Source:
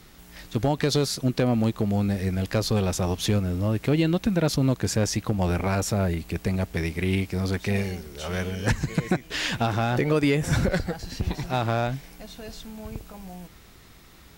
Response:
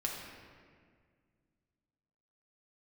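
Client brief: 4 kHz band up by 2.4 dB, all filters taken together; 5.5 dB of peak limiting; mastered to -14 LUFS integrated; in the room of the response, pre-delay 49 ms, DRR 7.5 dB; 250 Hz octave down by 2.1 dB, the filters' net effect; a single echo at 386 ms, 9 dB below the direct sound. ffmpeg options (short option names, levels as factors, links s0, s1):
-filter_complex "[0:a]equalizer=f=250:t=o:g=-3,equalizer=f=4000:t=o:g=3,alimiter=limit=0.126:level=0:latency=1,aecho=1:1:386:0.355,asplit=2[s0][s1];[1:a]atrim=start_sample=2205,adelay=49[s2];[s1][s2]afir=irnorm=-1:irlink=0,volume=0.299[s3];[s0][s3]amix=inputs=2:normalize=0,volume=4.47"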